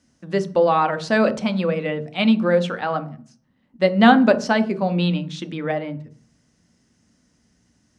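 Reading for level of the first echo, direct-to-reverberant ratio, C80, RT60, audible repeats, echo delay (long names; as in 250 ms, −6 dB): no echo audible, 9.0 dB, 21.0 dB, 0.45 s, no echo audible, no echo audible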